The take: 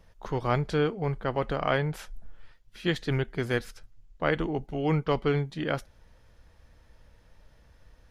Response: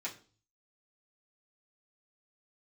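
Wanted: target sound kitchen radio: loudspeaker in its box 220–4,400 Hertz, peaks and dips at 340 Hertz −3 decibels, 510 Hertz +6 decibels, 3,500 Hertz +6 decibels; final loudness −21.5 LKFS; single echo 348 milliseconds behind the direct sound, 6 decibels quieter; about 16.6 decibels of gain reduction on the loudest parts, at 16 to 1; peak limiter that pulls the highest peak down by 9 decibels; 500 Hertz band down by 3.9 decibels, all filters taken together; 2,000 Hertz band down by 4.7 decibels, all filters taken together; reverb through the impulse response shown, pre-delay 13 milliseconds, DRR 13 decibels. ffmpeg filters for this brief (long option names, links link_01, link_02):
-filter_complex "[0:a]equalizer=frequency=500:width_type=o:gain=-7,equalizer=frequency=2000:width_type=o:gain=-6,acompressor=threshold=-40dB:ratio=16,alimiter=level_in=13.5dB:limit=-24dB:level=0:latency=1,volume=-13.5dB,aecho=1:1:348:0.501,asplit=2[link_01][link_02];[1:a]atrim=start_sample=2205,adelay=13[link_03];[link_02][link_03]afir=irnorm=-1:irlink=0,volume=-14dB[link_04];[link_01][link_04]amix=inputs=2:normalize=0,highpass=220,equalizer=frequency=340:width_type=q:width=4:gain=-3,equalizer=frequency=510:width_type=q:width=4:gain=6,equalizer=frequency=3500:width_type=q:width=4:gain=6,lowpass=frequency=4400:width=0.5412,lowpass=frequency=4400:width=1.3066,volume=29.5dB"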